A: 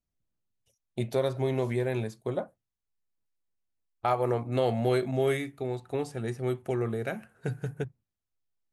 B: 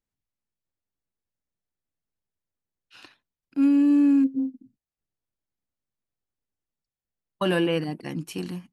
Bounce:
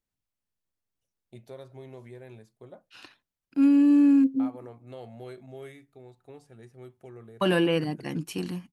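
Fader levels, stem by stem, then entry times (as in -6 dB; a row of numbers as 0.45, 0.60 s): -16.5, 0.0 dB; 0.35, 0.00 s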